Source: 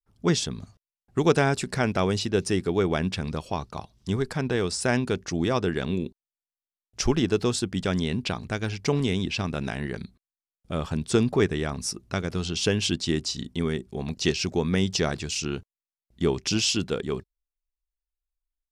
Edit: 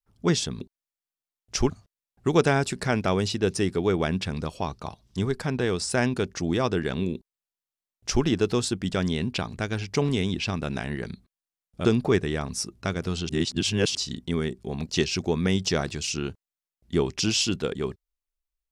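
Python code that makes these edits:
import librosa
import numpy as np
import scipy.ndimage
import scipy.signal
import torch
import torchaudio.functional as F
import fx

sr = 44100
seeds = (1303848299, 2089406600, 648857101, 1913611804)

y = fx.edit(x, sr, fx.duplicate(start_s=6.06, length_s=1.09, to_s=0.61),
    fx.cut(start_s=10.76, length_s=0.37),
    fx.reverse_span(start_s=12.57, length_s=0.66), tone=tone)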